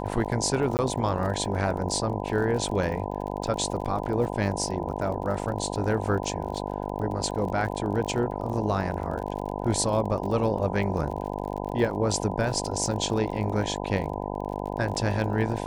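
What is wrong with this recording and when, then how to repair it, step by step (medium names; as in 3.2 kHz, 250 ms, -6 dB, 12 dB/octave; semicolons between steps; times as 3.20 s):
buzz 50 Hz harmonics 20 -32 dBFS
crackle 41 per s -34 dBFS
0.77–0.79 s: dropout 19 ms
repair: de-click; de-hum 50 Hz, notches 20; interpolate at 0.77 s, 19 ms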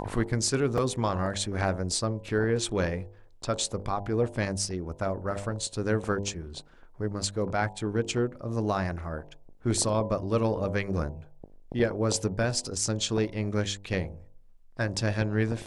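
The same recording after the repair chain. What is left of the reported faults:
nothing left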